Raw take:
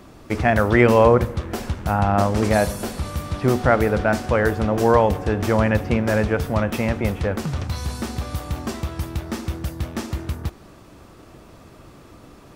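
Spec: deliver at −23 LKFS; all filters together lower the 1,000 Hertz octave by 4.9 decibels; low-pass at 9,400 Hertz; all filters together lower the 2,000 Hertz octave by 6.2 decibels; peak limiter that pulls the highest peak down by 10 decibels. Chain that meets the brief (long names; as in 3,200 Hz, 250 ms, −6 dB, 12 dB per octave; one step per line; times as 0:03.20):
low-pass filter 9,400 Hz
parametric band 1,000 Hz −5.5 dB
parametric band 2,000 Hz −6 dB
level +2.5 dB
brickwall limiter −11 dBFS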